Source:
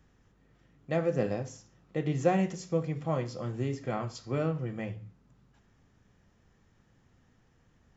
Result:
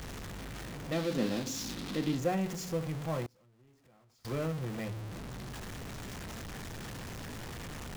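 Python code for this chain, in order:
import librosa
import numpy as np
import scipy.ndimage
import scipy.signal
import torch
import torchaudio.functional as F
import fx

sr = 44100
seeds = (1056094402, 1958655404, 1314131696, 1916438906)

y = x + 0.5 * 10.0 ** (-29.5 / 20.0) * np.sign(x)
y = fx.graphic_eq_10(y, sr, hz=(125, 250, 500, 4000), db=(-7, 12, -4, 10), at=(0.92, 2.19))
y = fx.gate_flip(y, sr, shuts_db=-31.0, range_db=-28, at=(3.26, 4.25))
y = y * 10.0 ** (-7.0 / 20.0)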